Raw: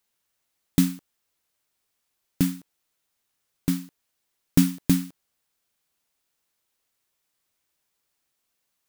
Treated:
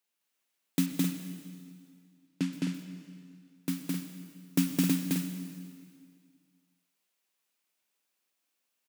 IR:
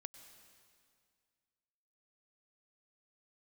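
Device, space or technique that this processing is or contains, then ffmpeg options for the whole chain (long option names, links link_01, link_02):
stadium PA: -filter_complex "[0:a]asettb=1/sr,asplit=3[link_01][link_02][link_03];[link_01]atrim=end=0.864[link_04];[link_02]atrim=start=0.86:end=2.53,asetpts=PTS-STARTPTS,afade=type=in:duration=0.004:curve=qsin,afade=type=out:start_time=1.666:duration=0.004:curve=qsin,lowpass=5600[link_05];[link_03]atrim=start=2.526[link_06];[link_04][link_05]acrossfade=duration=0.004:curve1=hsin:curve2=qsin[link_07];[link_07][link_06]acrossfade=duration=0.004:curve1=qsin:curve2=hsin,highpass=frequency=170:width=0.5412,highpass=frequency=170:width=1.3066,equalizer=frequency=2600:width_type=o:width=0.42:gain=4,aecho=1:1:212.8|262.4:0.891|0.501[link_08];[1:a]atrim=start_sample=2205[link_09];[link_08][link_09]afir=irnorm=-1:irlink=0,volume=-1.5dB"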